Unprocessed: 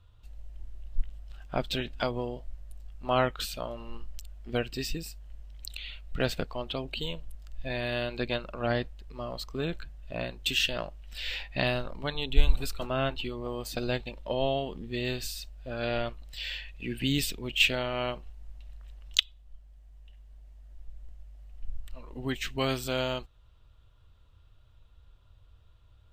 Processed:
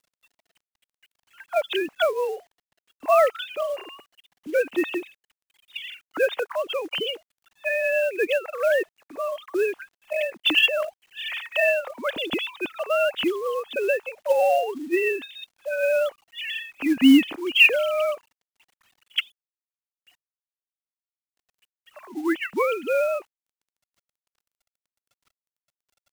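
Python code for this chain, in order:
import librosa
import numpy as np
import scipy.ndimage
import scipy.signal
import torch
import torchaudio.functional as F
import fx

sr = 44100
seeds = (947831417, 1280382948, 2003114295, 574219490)

y = fx.sine_speech(x, sr)
y = fx.quant_companded(y, sr, bits=6)
y = y * 10.0 ** (6.0 / 20.0)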